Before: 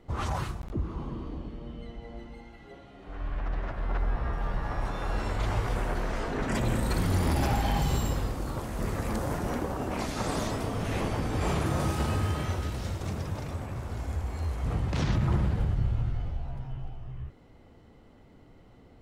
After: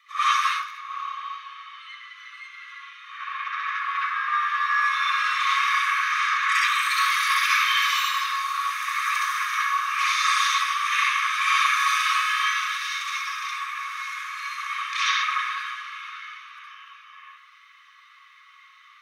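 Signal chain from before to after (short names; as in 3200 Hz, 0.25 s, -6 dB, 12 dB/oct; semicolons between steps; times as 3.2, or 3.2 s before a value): Chebyshev high-pass 1100 Hz, order 10; reverb RT60 0.60 s, pre-delay 60 ms, DRR -7.5 dB; gain +4.5 dB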